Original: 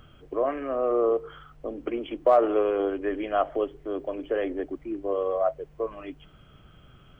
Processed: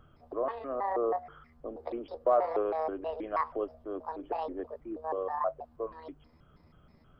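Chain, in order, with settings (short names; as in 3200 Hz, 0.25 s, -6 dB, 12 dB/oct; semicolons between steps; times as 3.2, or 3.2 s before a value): trilling pitch shifter +8 st, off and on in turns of 0.16 s; resonant high shelf 1700 Hz -7 dB, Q 1.5; gain -7 dB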